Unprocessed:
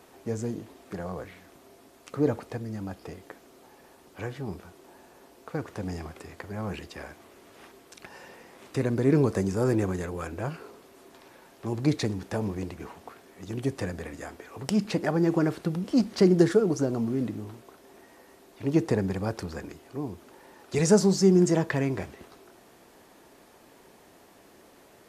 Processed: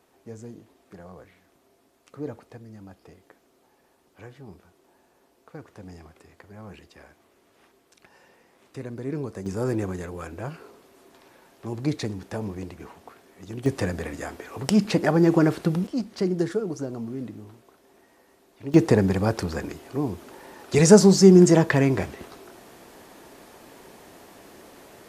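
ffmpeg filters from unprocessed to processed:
ffmpeg -i in.wav -af "asetnsamples=nb_out_samples=441:pad=0,asendcmd='9.46 volume volume -1.5dB;13.66 volume volume 5.5dB;15.87 volume volume -5dB;18.74 volume volume 7dB',volume=-9dB" out.wav

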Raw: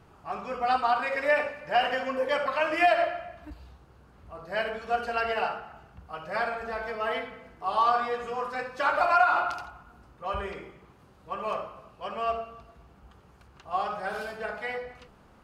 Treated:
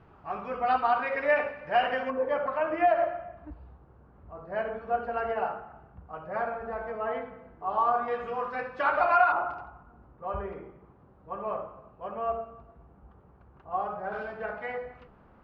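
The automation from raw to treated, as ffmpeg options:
ffmpeg -i in.wav -af "asetnsamples=nb_out_samples=441:pad=0,asendcmd='2.1 lowpass f 1200;8.08 lowpass f 2400;9.32 lowpass f 1100;14.12 lowpass f 1800',lowpass=2400" out.wav

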